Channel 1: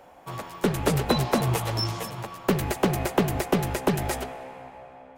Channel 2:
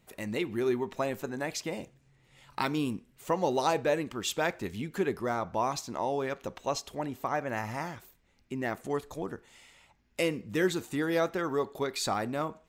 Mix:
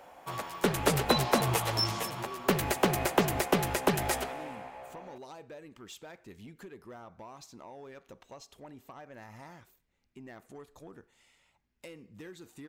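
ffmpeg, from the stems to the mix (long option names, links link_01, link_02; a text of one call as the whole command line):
ffmpeg -i stem1.wav -i stem2.wav -filter_complex "[0:a]lowshelf=frequency=420:gain=-7.5,volume=0.5dB[link_01];[1:a]acompressor=threshold=-32dB:ratio=6,asoftclip=type=tanh:threshold=-29dB,adelay=1650,volume=-10dB[link_02];[link_01][link_02]amix=inputs=2:normalize=0" out.wav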